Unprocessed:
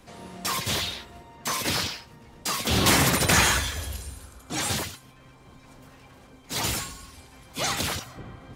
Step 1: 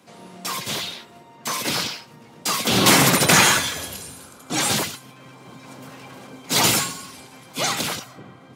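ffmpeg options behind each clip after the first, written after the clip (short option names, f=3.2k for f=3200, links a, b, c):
-af "dynaudnorm=f=430:g=9:m=16.5dB,highpass=f=130:w=0.5412,highpass=f=130:w=1.3066,bandreject=f=1.8k:w=18"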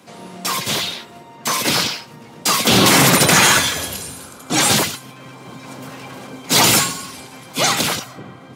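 -af "alimiter=level_in=7.5dB:limit=-1dB:release=50:level=0:latency=1,volume=-1dB"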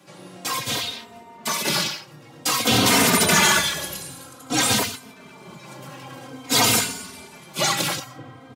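-filter_complex "[0:a]asplit=2[a][b];[b]adelay=3.1,afreqshift=-0.52[c];[a][c]amix=inputs=2:normalize=1,volume=-2dB"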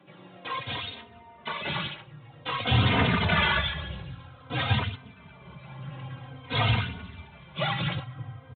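-af "aphaser=in_gain=1:out_gain=1:delay=2.1:decay=0.35:speed=1:type=triangular,aresample=8000,aresample=44100,asubboost=boost=11.5:cutoff=89,volume=-6dB"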